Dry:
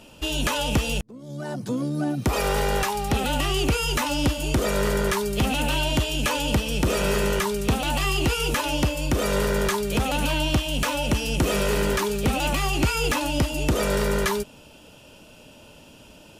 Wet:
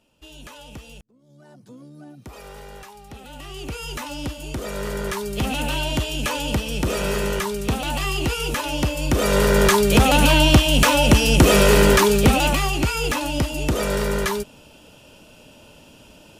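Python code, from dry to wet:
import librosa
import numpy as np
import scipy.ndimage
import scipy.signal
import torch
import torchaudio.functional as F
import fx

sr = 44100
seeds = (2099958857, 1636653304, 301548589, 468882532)

y = fx.gain(x, sr, db=fx.line((3.23, -17.0), (3.85, -7.0), (4.58, -7.0), (5.51, -0.5), (8.71, -0.5), (9.8, 9.0), (12.18, 9.0), (12.8, 0.5)))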